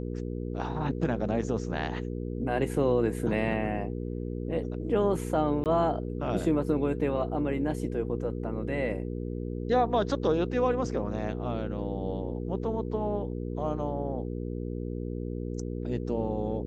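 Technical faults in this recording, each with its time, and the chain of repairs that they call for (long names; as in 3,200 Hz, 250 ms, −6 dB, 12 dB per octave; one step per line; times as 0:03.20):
mains hum 60 Hz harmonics 8 −34 dBFS
0:05.64–0:05.66: drop-out 18 ms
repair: hum removal 60 Hz, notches 8
repair the gap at 0:05.64, 18 ms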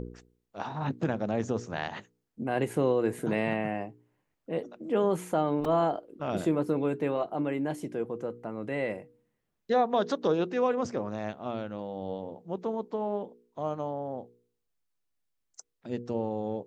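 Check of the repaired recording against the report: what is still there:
none of them is left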